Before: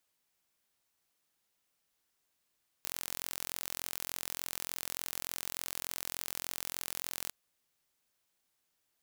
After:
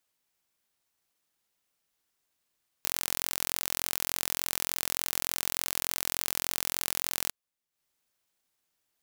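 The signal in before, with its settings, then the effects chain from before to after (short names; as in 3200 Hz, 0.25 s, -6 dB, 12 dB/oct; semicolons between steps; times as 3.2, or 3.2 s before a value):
pulse train 43.4/s, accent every 0, -10.5 dBFS 4.46 s
transient shaper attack +8 dB, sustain -9 dB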